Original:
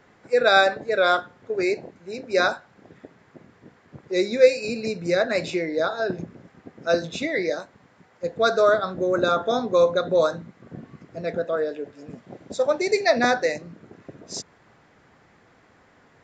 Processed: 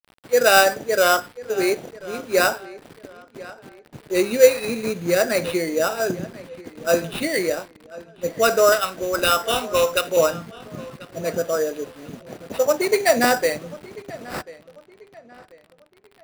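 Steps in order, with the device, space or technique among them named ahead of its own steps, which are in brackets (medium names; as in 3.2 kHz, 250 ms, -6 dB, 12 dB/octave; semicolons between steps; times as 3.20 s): 8.72–10.17 s: tilt EQ +4.5 dB/octave; early 8-bit sampler (sample-rate reducer 6.5 kHz, jitter 0%; bit crusher 8-bit); filtered feedback delay 1040 ms, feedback 37%, low-pass 3.2 kHz, level -19 dB; trim +2.5 dB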